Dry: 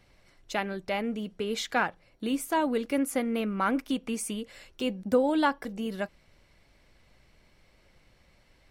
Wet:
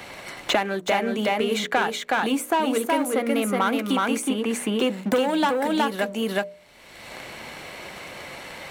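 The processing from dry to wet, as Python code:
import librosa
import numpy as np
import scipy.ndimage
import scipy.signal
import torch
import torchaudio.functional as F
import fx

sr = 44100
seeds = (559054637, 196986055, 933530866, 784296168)

y = fx.peak_eq(x, sr, hz=860.0, db=2.5, octaves=0.77)
y = fx.leveller(y, sr, passes=2)
y = fx.highpass(y, sr, hz=320.0, slope=6)
y = fx.peak_eq(y, sr, hz=5100.0, db=-7.5, octaves=0.36)
y = fx.hum_notches(y, sr, base_hz=60, count=10)
y = y + 10.0 ** (-3.0 / 20.0) * np.pad(y, (int(369 * sr / 1000.0), 0))[:len(y)]
y = fx.band_squash(y, sr, depth_pct=100)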